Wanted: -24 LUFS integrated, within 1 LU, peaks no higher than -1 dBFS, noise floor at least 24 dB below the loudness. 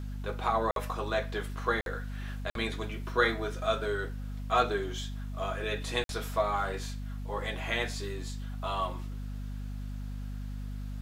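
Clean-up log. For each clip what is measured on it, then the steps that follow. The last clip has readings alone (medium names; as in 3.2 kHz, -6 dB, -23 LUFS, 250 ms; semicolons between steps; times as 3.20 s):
dropouts 4; longest dropout 52 ms; hum 50 Hz; highest harmonic 250 Hz; hum level -35 dBFS; loudness -33.5 LUFS; peak level -10.5 dBFS; loudness target -24.0 LUFS
-> interpolate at 0.71/1.81/2.50/6.04 s, 52 ms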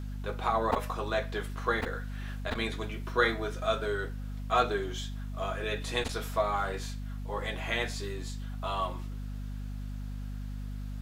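dropouts 0; hum 50 Hz; highest harmonic 250 Hz; hum level -35 dBFS
-> de-hum 50 Hz, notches 5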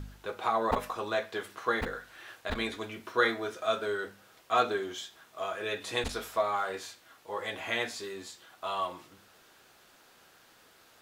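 hum not found; loudness -33.0 LUFS; peak level -11.0 dBFS; loudness target -24.0 LUFS
-> trim +9 dB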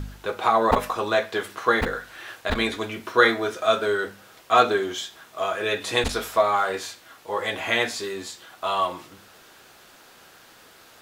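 loudness -24.0 LUFS; peak level -2.0 dBFS; noise floor -51 dBFS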